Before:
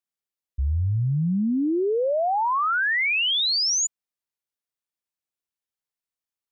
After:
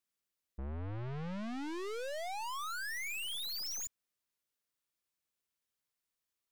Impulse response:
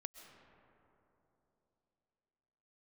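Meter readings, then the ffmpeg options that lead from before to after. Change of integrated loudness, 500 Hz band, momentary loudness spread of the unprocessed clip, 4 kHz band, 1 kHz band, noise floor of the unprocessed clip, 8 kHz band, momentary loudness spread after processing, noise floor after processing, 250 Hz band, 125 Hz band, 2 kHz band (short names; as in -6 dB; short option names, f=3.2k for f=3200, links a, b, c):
-17.5 dB, -17.5 dB, 7 LU, -17.5 dB, -17.5 dB, under -85 dBFS, n/a, 7 LU, under -85 dBFS, -18.0 dB, -18.5 dB, -17.5 dB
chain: -af "equalizer=f=790:t=o:w=0.36:g=-4.5,aeval=exprs='(tanh(158*val(0)+0.45)-tanh(0.45))/158':c=same,volume=4dB"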